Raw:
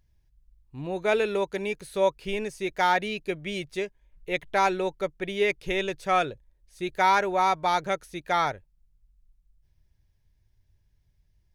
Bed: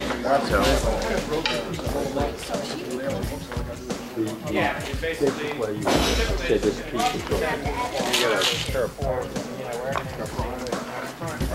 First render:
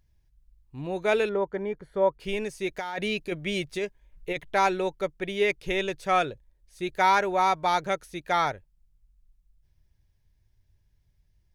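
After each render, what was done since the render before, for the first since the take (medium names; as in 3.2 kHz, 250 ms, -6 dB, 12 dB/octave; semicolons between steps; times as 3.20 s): 1.29–2.20 s: Savitzky-Golay filter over 41 samples; 2.77–4.41 s: compressor with a negative ratio -29 dBFS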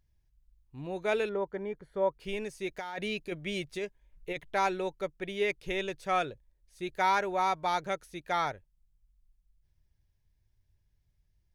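trim -5.5 dB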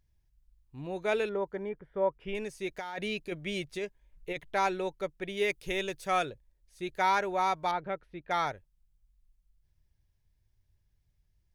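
1.69–2.35 s: Savitzky-Golay filter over 25 samples; 5.37–6.30 s: treble shelf 7 kHz +10.5 dB; 7.71–8.31 s: distance through air 450 m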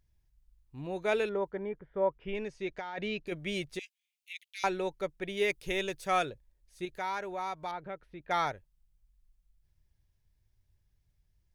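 1.50–3.27 s: distance through air 130 m; 3.79–4.64 s: steep high-pass 2.3 kHz 48 dB/octave; 6.85–8.20 s: compression 1.5:1, threshold -46 dBFS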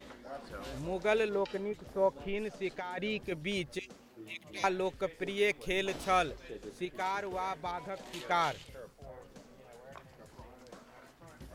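add bed -24 dB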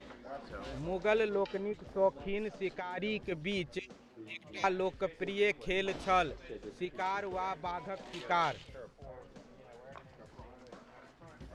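distance through air 78 m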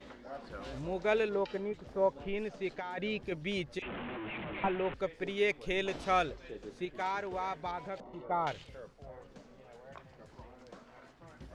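3.82–4.94 s: one-bit delta coder 16 kbps, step -34.5 dBFS; 8.00–8.47 s: Savitzky-Golay filter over 65 samples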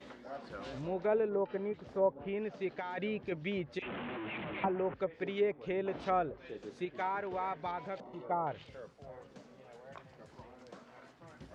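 low-pass that closes with the level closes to 990 Hz, closed at -28.5 dBFS; high-pass 90 Hz 12 dB/octave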